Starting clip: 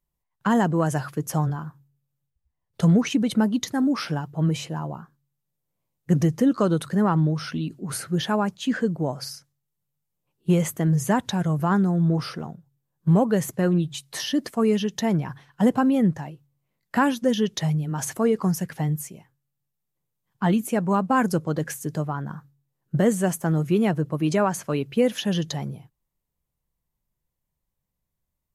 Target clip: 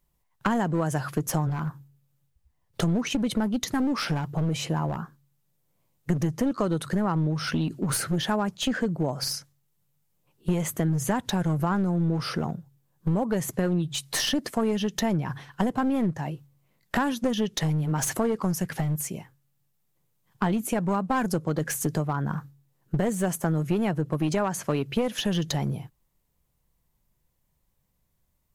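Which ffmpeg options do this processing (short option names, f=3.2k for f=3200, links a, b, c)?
-af "acompressor=threshold=-31dB:ratio=5,aeval=exprs='clip(val(0),-1,0.0211)':c=same,volume=8.5dB"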